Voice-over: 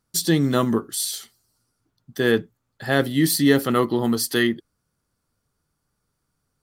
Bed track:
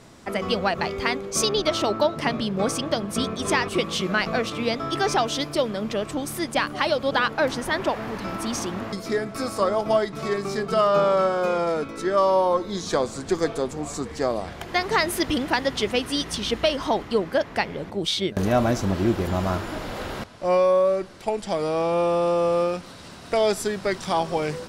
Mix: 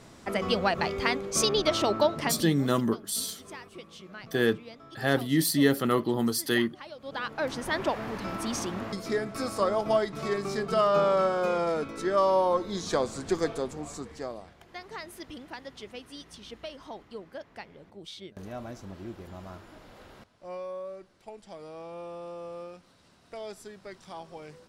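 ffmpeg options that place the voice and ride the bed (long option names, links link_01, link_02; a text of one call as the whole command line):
ffmpeg -i stem1.wav -i stem2.wav -filter_complex "[0:a]adelay=2150,volume=-5.5dB[link_01];[1:a]volume=15dB,afade=type=out:start_time=2.12:duration=0.48:silence=0.112202,afade=type=in:start_time=6.97:duration=0.82:silence=0.133352,afade=type=out:start_time=13.34:duration=1.21:silence=0.177828[link_02];[link_01][link_02]amix=inputs=2:normalize=0" out.wav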